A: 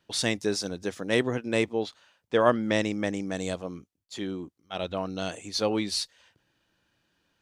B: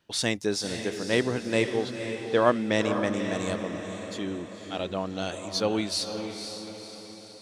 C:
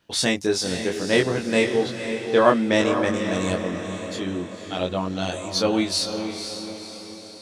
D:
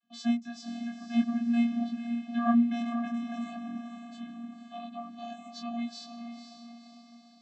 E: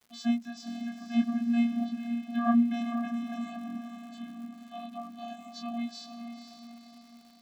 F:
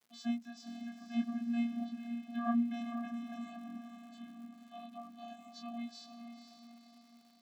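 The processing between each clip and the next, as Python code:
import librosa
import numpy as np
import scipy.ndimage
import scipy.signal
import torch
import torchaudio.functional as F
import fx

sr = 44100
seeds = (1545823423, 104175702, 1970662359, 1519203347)

y1 = fx.echo_diffused(x, sr, ms=507, feedback_pct=51, wet_db=-7.5)
y2 = fx.doubler(y1, sr, ms=22.0, db=-3.0)
y2 = y2 * librosa.db_to_amplitude(3.5)
y3 = fx.vocoder(y2, sr, bands=32, carrier='square', carrier_hz=235.0)
y3 = y3 * librosa.db_to_amplitude(-7.5)
y4 = fx.dmg_crackle(y3, sr, seeds[0], per_s=240.0, level_db=-49.0)
y5 = scipy.signal.sosfilt(scipy.signal.butter(2, 140.0, 'highpass', fs=sr, output='sos'), y4)
y5 = y5 * librosa.db_to_amplitude(-7.5)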